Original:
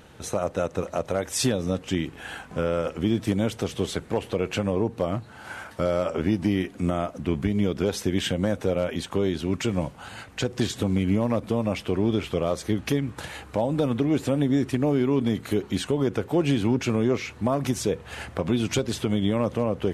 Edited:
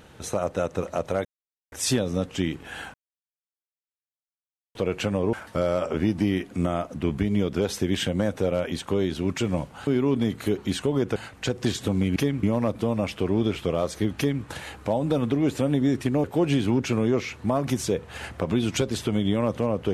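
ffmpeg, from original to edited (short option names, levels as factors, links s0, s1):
-filter_complex "[0:a]asplit=10[s0][s1][s2][s3][s4][s5][s6][s7][s8][s9];[s0]atrim=end=1.25,asetpts=PTS-STARTPTS,afade=t=out:st=1.246:d=0.004:c=hsin,apad=pad_dur=0.47[s10];[s1]atrim=start=1.25:end=2.47,asetpts=PTS-STARTPTS,afade=t=in:d=0.004:c=hsin,afade=t=out:st=1.216:d=0.004:c=hsin[s11];[s2]atrim=start=2.47:end=4.28,asetpts=PTS-STARTPTS,volume=0[s12];[s3]atrim=start=4.28:end=4.862,asetpts=PTS-STARTPTS,afade=t=in:d=0.004:c=hsin[s13];[s4]atrim=start=5.568:end=10.112[s14];[s5]atrim=start=14.918:end=16.212[s15];[s6]atrim=start=10.108:end=11.112[s16];[s7]atrim=start=12.848:end=13.122[s17];[s8]atrim=start=11.108:end=14.922[s18];[s9]atrim=start=16.208[s19];[s10][s11][s12][s13]concat=n=4:v=0:a=1[s20];[s20][s14]acrossfade=d=0.004:c1=hsin:c2=hsin[s21];[s21][s15]acrossfade=d=0.004:c1=hsin:c2=hsin[s22];[s22][s16]acrossfade=d=0.004:c1=hsin:c2=hsin[s23];[s23][s17]acrossfade=d=0.004:c1=hsin:c2=hsin[s24];[s24][s18]acrossfade=d=0.004:c1=hsin:c2=hsin[s25];[s25][s19]acrossfade=d=0.004:c1=hsin:c2=hsin"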